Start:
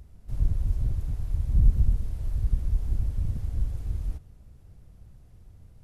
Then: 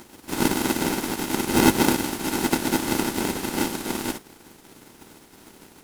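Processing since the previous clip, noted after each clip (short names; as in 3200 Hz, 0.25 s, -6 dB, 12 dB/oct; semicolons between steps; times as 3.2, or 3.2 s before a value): spectral contrast lowered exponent 0.47; polarity switched at an audio rate 290 Hz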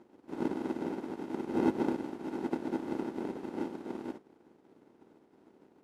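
band-pass 390 Hz, Q 0.88; gain -8.5 dB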